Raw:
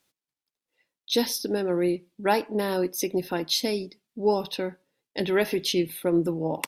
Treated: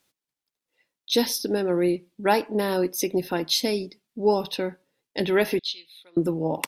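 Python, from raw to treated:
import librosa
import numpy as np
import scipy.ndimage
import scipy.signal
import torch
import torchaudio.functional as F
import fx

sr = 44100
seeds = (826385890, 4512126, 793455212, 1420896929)

y = fx.bandpass_q(x, sr, hz=3900.0, q=5.2, at=(5.59, 6.17))
y = y * 10.0 ** (2.0 / 20.0)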